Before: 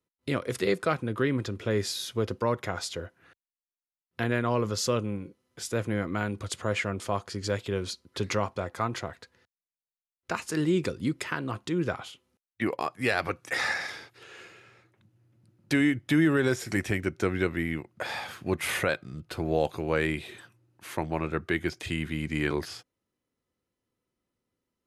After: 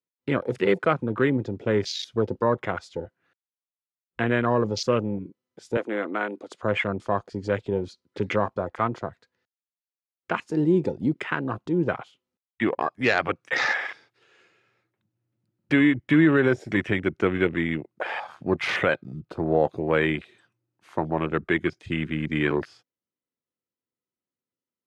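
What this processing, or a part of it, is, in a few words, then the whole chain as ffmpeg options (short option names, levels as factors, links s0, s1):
over-cleaned archive recording: -filter_complex "[0:a]highpass=120,lowpass=6800,afwtdn=0.0158,asettb=1/sr,asplit=3[s0][s1][s2];[s0]atrim=end=5.774[s3];[s1]atrim=start=5.77:end=6.63,asetpts=PTS-STARTPTS,afade=t=in:d=0.004:c=qsin,afade=t=out:st=0.856:d=0.004:c=qsin,highpass=f=280:w=0.5412,highpass=f=280:w=1.3066[s4];[s2]atrim=start=6.626[s5];[s3][s4]acrossfade=d=0.004:c1=hsin:c2=qsin[s6];[s6][s5]acrossfade=d=0.004:c1=qsin:c2=hsin,volume=1.78"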